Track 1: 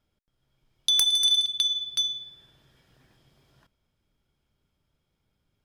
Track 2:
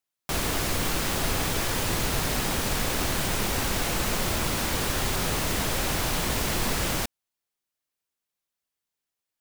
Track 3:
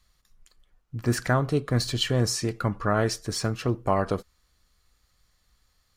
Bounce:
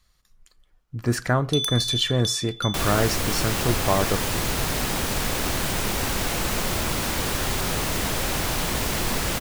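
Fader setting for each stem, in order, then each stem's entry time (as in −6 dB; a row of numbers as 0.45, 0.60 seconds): −5.5, +1.5, +1.5 decibels; 0.65, 2.45, 0.00 seconds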